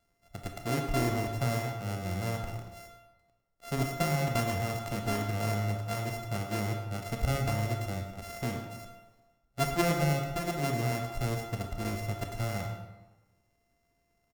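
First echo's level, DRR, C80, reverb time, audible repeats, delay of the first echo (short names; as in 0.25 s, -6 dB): -12.5 dB, 4.0 dB, 7.0 dB, 1.2 s, 1, 0.105 s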